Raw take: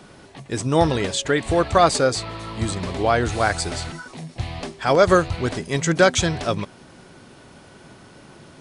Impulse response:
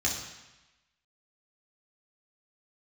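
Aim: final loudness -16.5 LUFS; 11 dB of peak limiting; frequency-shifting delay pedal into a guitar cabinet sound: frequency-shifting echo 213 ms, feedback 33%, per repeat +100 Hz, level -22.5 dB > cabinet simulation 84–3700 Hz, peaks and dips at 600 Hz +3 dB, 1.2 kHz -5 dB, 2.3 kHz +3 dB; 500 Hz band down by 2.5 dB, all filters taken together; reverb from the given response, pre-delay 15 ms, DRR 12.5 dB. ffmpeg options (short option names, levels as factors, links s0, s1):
-filter_complex "[0:a]equalizer=f=500:t=o:g=-5,alimiter=limit=0.158:level=0:latency=1,asplit=2[s0][s1];[1:a]atrim=start_sample=2205,adelay=15[s2];[s1][s2]afir=irnorm=-1:irlink=0,volume=0.0944[s3];[s0][s3]amix=inputs=2:normalize=0,asplit=3[s4][s5][s6];[s5]adelay=213,afreqshift=100,volume=0.075[s7];[s6]adelay=426,afreqshift=200,volume=0.0248[s8];[s4][s7][s8]amix=inputs=3:normalize=0,highpass=84,equalizer=f=600:t=q:w=4:g=3,equalizer=f=1200:t=q:w=4:g=-5,equalizer=f=2300:t=q:w=4:g=3,lowpass=f=3700:w=0.5412,lowpass=f=3700:w=1.3066,volume=3.76"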